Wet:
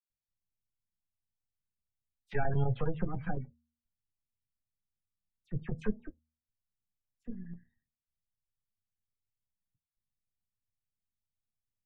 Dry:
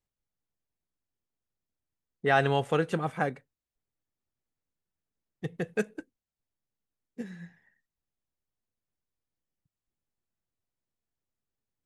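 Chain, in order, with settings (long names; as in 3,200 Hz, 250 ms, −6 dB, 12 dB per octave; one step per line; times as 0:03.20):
gain on one half-wave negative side −12 dB
bass and treble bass +13 dB, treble −5 dB
all-pass dispersion lows, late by 92 ms, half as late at 2,400 Hz
noise gate −50 dBFS, range −7 dB
gate on every frequency bin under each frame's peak −30 dB strong
dynamic equaliser 120 Hz, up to +6 dB, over −41 dBFS, Q 2.1
square-wave tremolo 9.8 Hz, depth 65%, duty 85%
flanger 1.4 Hz, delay 8.3 ms, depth 2.2 ms, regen −43%
hum removal 78.83 Hz, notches 3
level −3 dB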